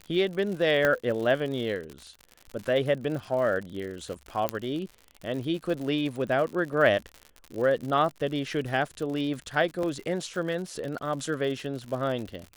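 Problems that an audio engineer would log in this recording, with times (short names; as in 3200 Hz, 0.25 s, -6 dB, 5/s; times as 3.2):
crackle 88/s -34 dBFS
0.85 pop -11 dBFS
4.49 pop -11 dBFS
6.73 gap 2.5 ms
9.83 gap 3.1 ms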